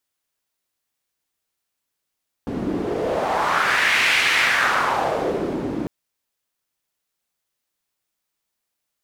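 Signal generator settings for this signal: wind-like swept noise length 3.40 s, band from 270 Hz, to 2300 Hz, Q 2.5, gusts 1, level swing 7 dB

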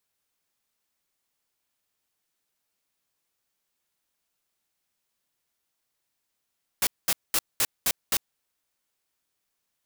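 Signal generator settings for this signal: noise bursts white, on 0.05 s, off 0.21 s, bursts 6, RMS -23 dBFS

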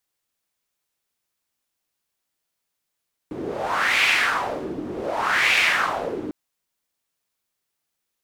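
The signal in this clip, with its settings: wind-like swept noise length 3.00 s, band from 300 Hz, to 2400 Hz, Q 3.4, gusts 2, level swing 12.5 dB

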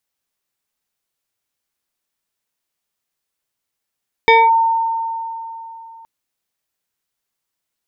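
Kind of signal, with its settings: FM tone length 1.77 s, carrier 909 Hz, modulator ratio 1.5, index 1.4, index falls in 0.22 s linear, decay 3.30 s, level -5.5 dB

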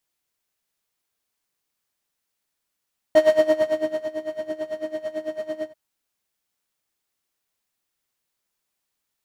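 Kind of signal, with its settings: synth patch with tremolo D#5, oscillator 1 square, oscillator 2 square, interval -12 st, oscillator 2 level -17 dB, noise -2.5 dB, filter bandpass, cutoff 200 Hz, Q 0.74, filter envelope 1.5 oct, filter decay 0.65 s, filter sustain 45%, attack 1.3 ms, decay 0.95 s, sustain -12 dB, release 0.09 s, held 2.50 s, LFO 9 Hz, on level 18 dB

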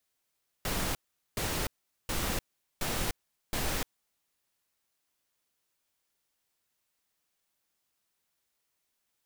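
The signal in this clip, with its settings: noise bursts pink, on 0.30 s, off 0.42 s, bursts 5, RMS -31.5 dBFS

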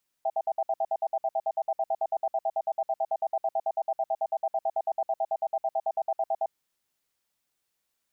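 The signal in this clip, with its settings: cadence 658 Hz, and 786 Hz, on 0.05 s, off 0.06 s, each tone -26.5 dBFS 6.23 s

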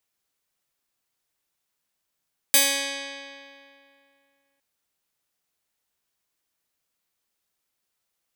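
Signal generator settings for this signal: plucked string C#4, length 2.06 s, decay 2.51 s, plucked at 0.2, bright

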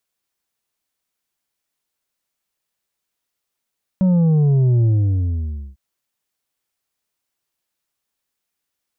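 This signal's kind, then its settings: sub drop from 190 Hz, over 1.75 s, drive 5.5 dB, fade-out 0.91 s, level -12.5 dB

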